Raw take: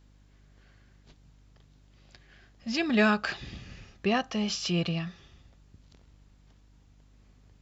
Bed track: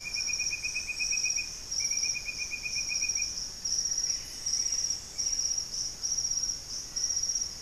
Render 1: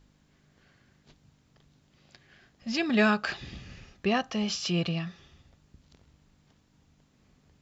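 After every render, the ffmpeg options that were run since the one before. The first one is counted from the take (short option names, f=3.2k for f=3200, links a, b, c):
-af "bandreject=f=50:t=h:w=4,bandreject=f=100:t=h:w=4"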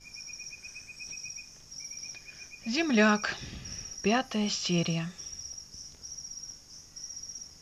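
-filter_complex "[1:a]volume=-12dB[a];[0:a][a]amix=inputs=2:normalize=0"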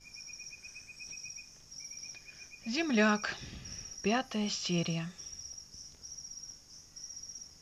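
-af "volume=-4dB"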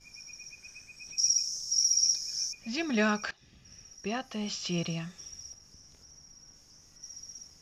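-filter_complex "[0:a]asettb=1/sr,asplit=3[a][b][c];[a]atrim=end=1.184[d];[b]atrim=start=1.18:end=2.53,asetpts=PTS-STARTPTS,afade=t=in:d=0.004:c=qsin,afade=t=out:st=1.346:d=0.004:c=qsin,highshelf=f=3.7k:t=q:w=3:g=13[e];[c]atrim=start=2.526[f];[d][e]acrossfade=d=0.004:c1=hsin:c2=qsin[g];[g][f]acrossfade=d=0.004:c1=qsin:c2=hsin,asettb=1/sr,asplit=3[h][i][j];[h]atrim=end=5.534[k];[i]atrim=start=5.53:end=7.03,asetpts=PTS-STARTPTS,afade=t=in:d=0.004:c=qsin,afade=t=out:st=1.496:d=0.004:c=qsin,acrossover=split=2600[l][m];[m]acompressor=threshold=-53dB:ratio=4:attack=1:release=60[n];[l][n]amix=inputs=2:normalize=0[o];[j]atrim=start=7.026[p];[k][o]acrossfade=d=0.004:c1=hsin:c2=qsin[q];[q][p]acrossfade=d=0.004:c1=qsin:c2=hsin,asplit=2[r][s];[r]atrim=end=3.31,asetpts=PTS-STARTPTS,afade=t=out:st=3.306:d=0.004:c=hsin:silence=0.1[t];[s]atrim=start=3.31,asetpts=PTS-STARTPTS,afade=t=in:d=1.33:silence=0.1[u];[t][u]concat=n=2:v=0:a=1"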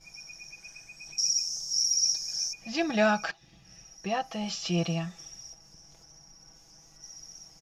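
-af "equalizer=f=750:w=2.9:g=9,aecho=1:1:6.1:0.65"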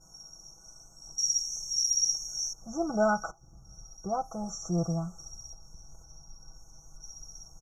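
-af "afftfilt=real='re*(1-between(b*sr/4096,1500,5500))':imag='im*(1-between(b*sr/4096,1500,5500))':win_size=4096:overlap=0.75,asubboost=boost=5.5:cutoff=92"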